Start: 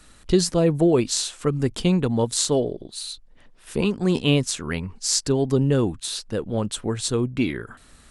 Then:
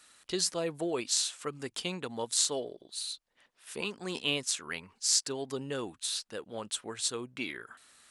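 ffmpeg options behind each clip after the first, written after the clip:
-af "highpass=f=1300:p=1,volume=0.631"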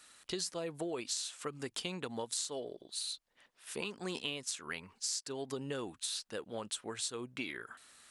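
-af "acompressor=threshold=0.0178:ratio=6"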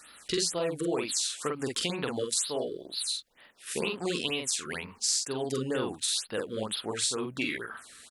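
-filter_complex "[0:a]asplit=2[s0][s1];[s1]adelay=46,volume=0.708[s2];[s0][s2]amix=inputs=2:normalize=0,afftfilt=real='re*(1-between(b*sr/1024,710*pow(7500/710,0.5+0.5*sin(2*PI*2.1*pts/sr))/1.41,710*pow(7500/710,0.5+0.5*sin(2*PI*2.1*pts/sr))*1.41))':imag='im*(1-between(b*sr/1024,710*pow(7500/710,0.5+0.5*sin(2*PI*2.1*pts/sr))/1.41,710*pow(7500/710,0.5+0.5*sin(2*PI*2.1*pts/sr))*1.41))':win_size=1024:overlap=0.75,volume=2.37"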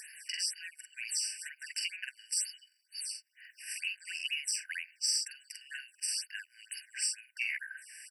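-af "acompressor=mode=upward:threshold=0.01:ratio=2.5,asoftclip=type=tanh:threshold=0.251,afftfilt=real='re*eq(mod(floor(b*sr/1024/1500),2),1)':imag='im*eq(mod(floor(b*sr/1024/1500),2),1)':win_size=1024:overlap=0.75"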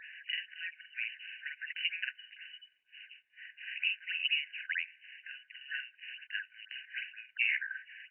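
-af "volume=1.68" -ar 16000 -c:a aac -b:a 16k

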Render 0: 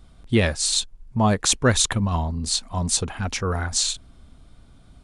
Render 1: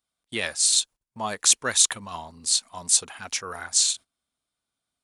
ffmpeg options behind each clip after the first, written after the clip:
-af "agate=range=0.1:threshold=0.0158:ratio=16:detection=peak,highpass=f=1200:p=1,highshelf=f=6900:g=11,volume=0.75"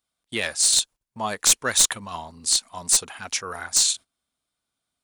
-af "aeval=exprs='clip(val(0),-1,0.178)':c=same,volume=1.26"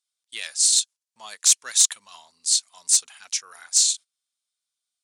-af "bandpass=f=6400:t=q:w=0.98:csg=0,volume=1.26"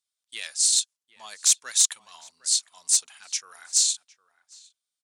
-filter_complex "[0:a]asplit=2[s0][s1];[s1]adelay=758,volume=0.141,highshelf=f=4000:g=-17.1[s2];[s0][s2]amix=inputs=2:normalize=0,volume=0.75"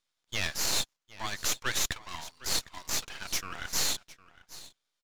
-filter_complex "[0:a]asplit=2[s0][s1];[s1]highpass=f=720:p=1,volume=15.8,asoftclip=type=tanh:threshold=0.531[s2];[s0][s2]amix=inputs=2:normalize=0,lowpass=f=2200:p=1,volume=0.501,aresample=16000,aresample=44100,aeval=exprs='max(val(0),0)':c=same,volume=0.75"

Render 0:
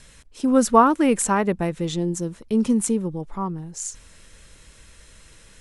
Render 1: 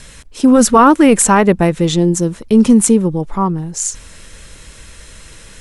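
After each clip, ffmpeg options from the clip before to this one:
-af "apsyclip=4.73,volume=0.794"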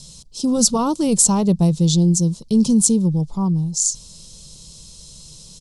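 -af "firequalizer=gain_entry='entry(100,0);entry(150,12);entry(260,-2);entry(1000,-4);entry(1700,-24);entry(3100,0);entry(4500,13);entry(12000,2)':delay=0.05:min_phase=1,volume=0.376"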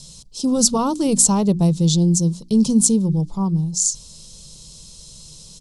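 -af "bandreject=f=60:t=h:w=6,bandreject=f=120:t=h:w=6,bandreject=f=180:t=h:w=6,bandreject=f=240:t=h:w=6,bandreject=f=300:t=h:w=6,bandreject=f=360:t=h:w=6"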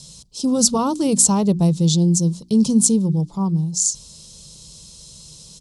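-af "highpass=44"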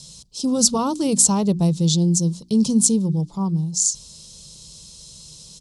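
-af "equalizer=f=4500:t=o:w=1.9:g=2.5,volume=0.794"

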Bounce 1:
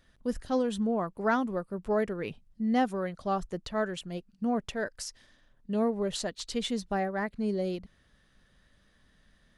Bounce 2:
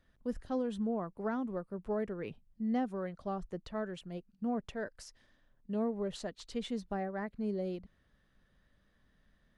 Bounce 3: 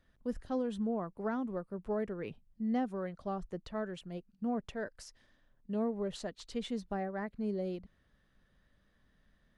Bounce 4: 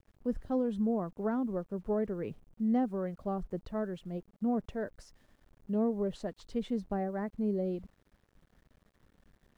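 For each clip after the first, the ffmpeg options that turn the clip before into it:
-filter_complex "[0:a]highshelf=f=3000:g=-9.5,acrossover=split=420[s0][s1];[s1]acompressor=threshold=0.0282:ratio=6[s2];[s0][s2]amix=inputs=2:normalize=0,volume=0.562"
-af anull
-af "acrusher=bits=10:mix=0:aa=0.000001,tiltshelf=f=1300:g=6,volume=0.841"

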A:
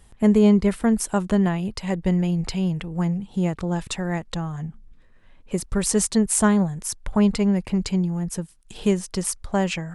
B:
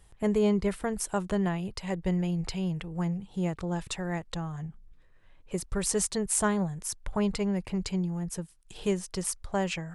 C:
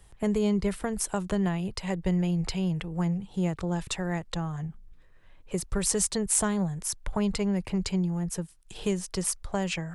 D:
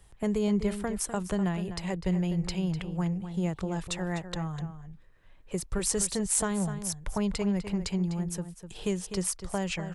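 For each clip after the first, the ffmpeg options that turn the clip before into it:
-af "equalizer=f=230:t=o:w=0.28:g=-11.5,volume=0.531"
-filter_complex "[0:a]acrossover=split=200|3000[s0][s1][s2];[s1]acompressor=threshold=0.0282:ratio=3[s3];[s0][s3][s2]amix=inputs=3:normalize=0,volume=1.41"
-filter_complex "[0:a]asplit=2[s0][s1];[s1]adelay=250.7,volume=0.316,highshelf=f=4000:g=-5.64[s2];[s0][s2]amix=inputs=2:normalize=0,volume=0.794"

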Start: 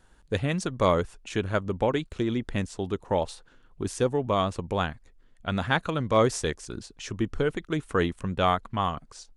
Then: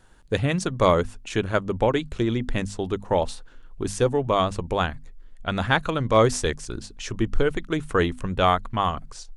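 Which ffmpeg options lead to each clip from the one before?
-af "equalizer=f=120:w=4.8:g=4.5,bandreject=f=50:t=h:w=6,bandreject=f=100:t=h:w=6,bandreject=f=150:t=h:w=6,bandreject=f=200:t=h:w=6,bandreject=f=250:t=h:w=6,asubboost=boost=3.5:cutoff=57,volume=1.58"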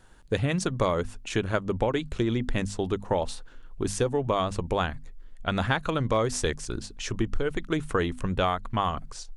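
-af "acompressor=threshold=0.0891:ratio=6"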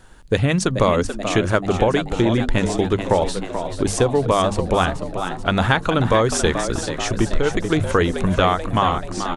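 -filter_complex "[0:a]asplit=8[s0][s1][s2][s3][s4][s5][s6][s7];[s1]adelay=434,afreqshift=85,volume=0.355[s8];[s2]adelay=868,afreqshift=170,volume=0.207[s9];[s3]adelay=1302,afreqshift=255,volume=0.119[s10];[s4]adelay=1736,afreqshift=340,volume=0.0692[s11];[s5]adelay=2170,afreqshift=425,volume=0.0403[s12];[s6]adelay=2604,afreqshift=510,volume=0.0232[s13];[s7]adelay=3038,afreqshift=595,volume=0.0135[s14];[s0][s8][s9][s10][s11][s12][s13][s14]amix=inputs=8:normalize=0,volume=2.51"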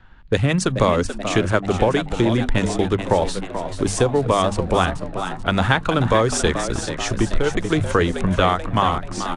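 -filter_complex "[0:a]acrossover=split=310|670|3600[s0][s1][s2][s3];[s1]aeval=exprs='sgn(val(0))*max(abs(val(0))-0.01,0)':c=same[s4];[s3]acrusher=bits=6:mix=0:aa=0.000001[s5];[s0][s4][s2][s5]amix=inputs=4:normalize=0" -ar 22050 -c:a aac -b:a 64k

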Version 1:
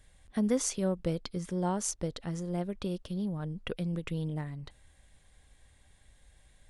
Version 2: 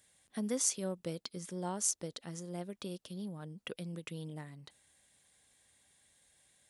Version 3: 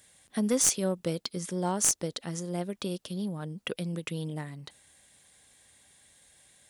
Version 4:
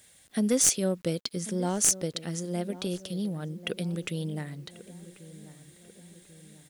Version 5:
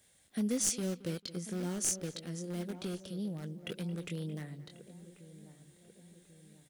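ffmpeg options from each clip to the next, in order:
-af "highpass=160,highshelf=f=4000:g=11.5,volume=0.447"
-af "aeval=exprs='clip(val(0),-1,0.0398)':c=same,volume=2.66"
-filter_complex "[0:a]equalizer=f=1000:t=o:w=0.65:g=-7.5,asplit=2[s0][s1];[s1]adelay=1090,lowpass=f=1200:p=1,volume=0.168,asplit=2[s2][s3];[s3]adelay=1090,lowpass=f=1200:p=1,volume=0.54,asplit=2[s4][s5];[s5]adelay=1090,lowpass=f=1200:p=1,volume=0.54,asplit=2[s6][s7];[s7]adelay=1090,lowpass=f=1200:p=1,volume=0.54,asplit=2[s8][s9];[s9]adelay=1090,lowpass=f=1200:p=1,volume=0.54[s10];[s0][s2][s4][s6][s8][s10]amix=inputs=6:normalize=0,acrusher=bits=10:mix=0:aa=0.000001,volume=1.26"
-filter_complex "[0:a]acrossover=split=530|1100[s0][s1][s2];[s1]aeval=exprs='(mod(112*val(0)+1,2)-1)/112':c=same[s3];[s2]flanger=delay=19:depth=5.4:speed=1.8[s4];[s0][s3][s4]amix=inputs=3:normalize=0,asplit=2[s5][s6];[s6]adelay=222,lowpass=f=2700:p=1,volume=0.15,asplit=2[s7][s8];[s8]adelay=222,lowpass=f=2700:p=1,volume=0.24[s9];[s5][s7][s9]amix=inputs=3:normalize=0,volume=0.501"

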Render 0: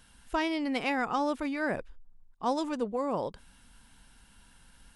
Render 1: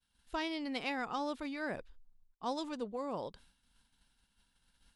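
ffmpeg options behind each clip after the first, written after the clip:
-af "agate=range=0.0224:threshold=0.00355:ratio=3:detection=peak,equalizer=f=4000:w=1.7:g=7.5,volume=0.398"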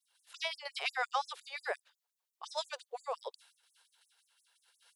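-af "afftfilt=real='re*gte(b*sr/1024,380*pow(6400/380,0.5+0.5*sin(2*PI*5.7*pts/sr)))':imag='im*gte(b*sr/1024,380*pow(6400/380,0.5+0.5*sin(2*PI*5.7*pts/sr)))':win_size=1024:overlap=0.75,volume=2.11"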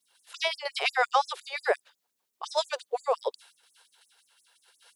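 -af "equalizer=f=280:w=0.74:g=10.5,volume=2.37"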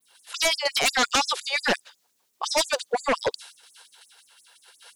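-af "aeval=exprs='0.299*sin(PI/2*3.98*val(0)/0.299)':c=same,adynamicequalizer=threshold=0.0158:dfrequency=6200:dqfactor=0.88:tfrequency=6200:tqfactor=0.88:attack=5:release=100:ratio=0.375:range=3:mode=boostabove:tftype=bell,volume=0.447"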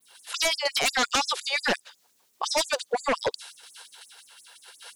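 -af "acompressor=threshold=0.0126:ratio=1.5,volume=1.68"

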